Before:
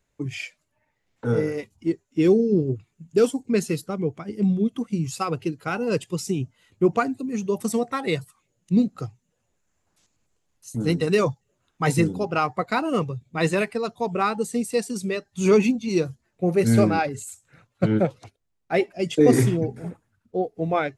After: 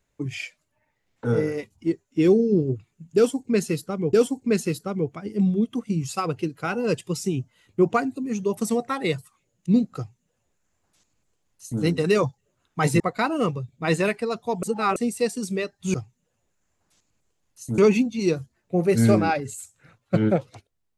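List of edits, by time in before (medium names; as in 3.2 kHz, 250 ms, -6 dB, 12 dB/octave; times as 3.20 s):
3.16–4.13 s: loop, 2 plays
9.00–10.84 s: copy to 15.47 s
12.03–12.53 s: delete
14.16–14.49 s: reverse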